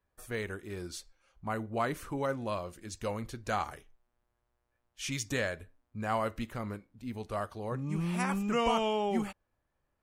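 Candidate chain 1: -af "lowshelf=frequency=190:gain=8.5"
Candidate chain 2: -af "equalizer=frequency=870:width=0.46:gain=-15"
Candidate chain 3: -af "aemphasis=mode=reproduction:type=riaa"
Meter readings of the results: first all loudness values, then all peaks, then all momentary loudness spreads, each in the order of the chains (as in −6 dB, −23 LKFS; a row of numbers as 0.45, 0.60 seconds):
−32.5, −41.5, −29.5 LKFS; −14.5, −22.5, −11.0 dBFS; 12, 11, 12 LU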